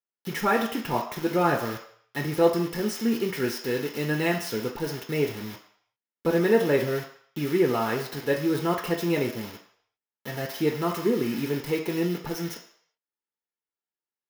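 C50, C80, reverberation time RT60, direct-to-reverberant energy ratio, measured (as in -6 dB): 8.0 dB, 12.0 dB, 0.60 s, -0.5 dB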